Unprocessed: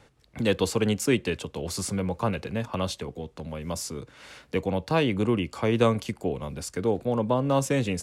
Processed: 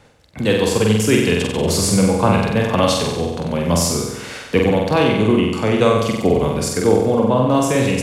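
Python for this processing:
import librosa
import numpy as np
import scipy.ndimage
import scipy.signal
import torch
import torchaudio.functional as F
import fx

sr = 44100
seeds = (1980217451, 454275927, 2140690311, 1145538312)

y = fx.rider(x, sr, range_db=4, speed_s=0.5)
y = fx.room_flutter(y, sr, wall_m=8.0, rt60_s=1.0)
y = y * librosa.db_to_amplitude(8.0)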